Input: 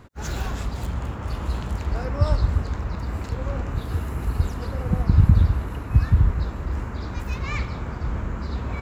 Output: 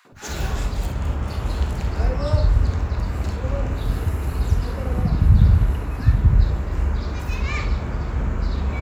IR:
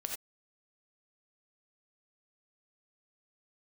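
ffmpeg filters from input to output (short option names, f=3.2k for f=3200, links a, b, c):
-filter_complex "[0:a]asplit=2[a][b];[b]alimiter=limit=-12dB:level=0:latency=1:release=265,volume=-2dB[c];[a][c]amix=inputs=2:normalize=0,acrossover=split=200|1200[d][e][f];[e]adelay=50[g];[d]adelay=120[h];[h][g][f]amix=inputs=3:normalize=0[i];[1:a]atrim=start_sample=2205,atrim=end_sample=3087[j];[i][j]afir=irnorm=-1:irlink=0"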